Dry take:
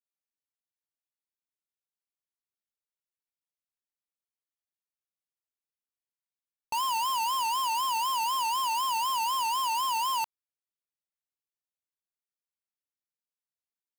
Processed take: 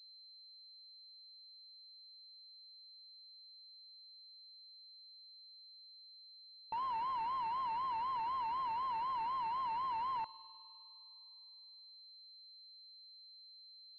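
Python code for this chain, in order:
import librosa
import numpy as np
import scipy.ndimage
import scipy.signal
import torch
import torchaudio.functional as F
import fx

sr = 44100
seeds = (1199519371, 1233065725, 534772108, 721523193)

y = fx.rev_spring(x, sr, rt60_s=2.6, pass_ms=(50,), chirp_ms=60, drr_db=17.0)
y = fx.pwm(y, sr, carrier_hz=4100.0)
y = y * librosa.db_to_amplitude(-8.0)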